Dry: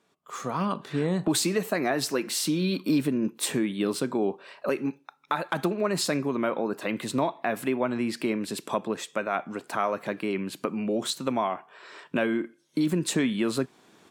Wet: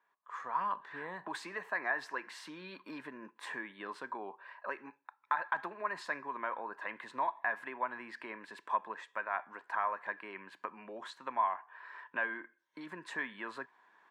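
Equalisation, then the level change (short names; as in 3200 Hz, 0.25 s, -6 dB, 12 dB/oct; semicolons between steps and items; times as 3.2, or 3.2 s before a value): double band-pass 1300 Hz, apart 0.74 oct; bell 1300 Hz +11.5 dB 0.22 oct; +1.0 dB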